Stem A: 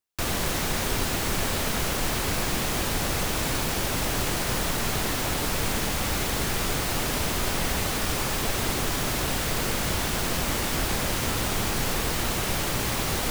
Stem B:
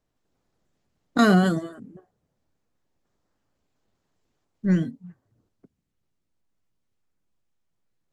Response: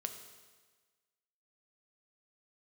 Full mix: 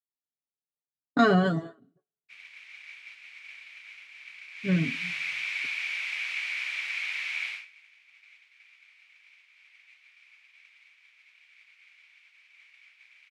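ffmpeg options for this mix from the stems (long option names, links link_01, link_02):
-filter_complex "[0:a]highpass=frequency=2300:width_type=q:width=10,adelay=2100,volume=-9.5dB,afade=type=in:start_time=4.51:duration=0.56:silence=0.354813,afade=type=out:start_time=7.45:duration=0.21:silence=0.237137,asplit=2[link_01][link_02];[link_02]volume=-19.5dB[link_03];[1:a]aecho=1:1:7.2:0.72,volume=-5dB,asplit=2[link_04][link_05];[link_05]volume=-14dB[link_06];[2:a]atrim=start_sample=2205[link_07];[link_03][link_06]amix=inputs=2:normalize=0[link_08];[link_08][link_07]afir=irnorm=-1:irlink=0[link_09];[link_01][link_04][link_09]amix=inputs=3:normalize=0,agate=range=-33dB:threshold=-34dB:ratio=3:detection=peak,highpass=100,lowpass=3800"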